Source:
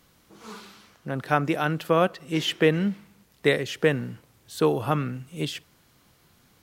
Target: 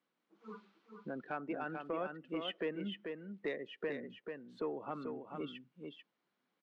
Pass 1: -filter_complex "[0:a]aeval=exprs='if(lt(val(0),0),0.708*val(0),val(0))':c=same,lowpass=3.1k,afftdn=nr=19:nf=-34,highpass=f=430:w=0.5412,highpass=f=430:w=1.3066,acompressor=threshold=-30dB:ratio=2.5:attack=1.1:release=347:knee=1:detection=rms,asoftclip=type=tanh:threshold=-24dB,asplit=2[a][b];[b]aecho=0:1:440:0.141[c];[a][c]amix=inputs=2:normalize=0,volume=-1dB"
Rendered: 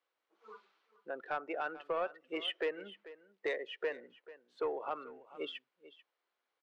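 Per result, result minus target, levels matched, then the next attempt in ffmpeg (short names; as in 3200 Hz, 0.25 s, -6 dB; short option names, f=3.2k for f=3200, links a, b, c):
250 Hz band -9.5 dB; echo-to-direct -11.5 dB; compressor: peak gain reduction -5 dB
-filter_complex "[0:a]aeval=exprs='if(lt(val(0),0),0.708*val(0),val(0))':c=same,lowpass=3.1k,afftdn=nr=19:nf=-34,highpass=f=210:w=0.5412,highpass=f=210:w=1.3066,acompressor=threshold=-30dB:ratio=2.5:attack=1.1:release=347:knee=1:detection=rms,asoftclip=type=tanh:threshold=-24dB,asplit=2[a][b];[b]aecho=0:1:440:0.141[c];[a][c]amix=inputs=2:normalize=0,volume=-1dB"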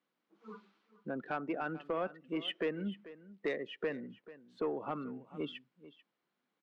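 echo-to-direct -11.5 dB; compressor: peak gain reduction -4 dB
-filter_complex "[0:a]aeval=exprs='if(lt(val(0),0),0.708*val(0),val(0))':c=same,lowpass=3.1k,afftdn=nr=19:nf=-34,highpass=f=210:w=0.5412,highpass=f=210:w=1.3066,acompressor=threshold=-30dB:ratio=2.5:attack=1.1:release=347:knee=1:detection=rms,asoftclip=type=tanh:threshold=-24dB,asplit=2[a][b];[b]aecho=0:1:440:0.531[c];[a][c]amix=inputs=2:normalize=0,volume=-1dB"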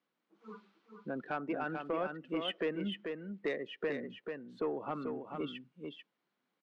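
compressor: peak gain reduction -4 dB
-filter_complex "[0:a]aeval=exprs='if(lt(val(0),0),0.708*val(0),val(0))':c=same,lowpass=3.1k,afftdn=nr=19:nf=-34,highpass=f=210:w=0.5412,highpass=f=210:w=1.3066,acompressor=threshold=-37dB:ratio=2.5:attack=1.1:release=347:knee=1:detection=rms,asoftclip=type=tanh:threshold=-24dB,asplit=2[a][b];[b]aecho=0:1:440:0.531[c];[a][c]amix=inputs=2:normalize=0,volume=-1dB"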